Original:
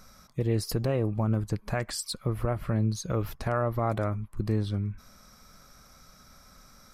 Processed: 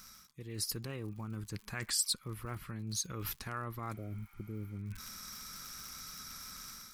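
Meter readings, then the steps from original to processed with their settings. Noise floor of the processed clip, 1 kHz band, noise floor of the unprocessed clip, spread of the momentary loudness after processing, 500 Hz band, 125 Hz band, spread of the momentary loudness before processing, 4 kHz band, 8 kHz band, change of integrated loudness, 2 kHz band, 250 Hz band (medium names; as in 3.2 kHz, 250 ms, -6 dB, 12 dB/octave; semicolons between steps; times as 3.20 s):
-61 dBFS, -11.0 dB, -56 dBFS, 11 LU, -18.0 dB, -13.5 dB, 5 LU, +1.0 dB, +3.5 dB, -9.5 dB, -5.5 dB, -13.5 dB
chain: crackle 91 per s -47 dBFS; peaking EQ 620 Hz -14.5 dB 0.75 oct; reverse; compression 6:1, threshold -40 dBFS, peak gain reduction 16.5 dB; reverse; spectral replace 3.97–4.74 s, 740–11000 Hz after; level rider gain up to 7.5 dB; tilt EQ +2 dB/octave; trim -1.5 dB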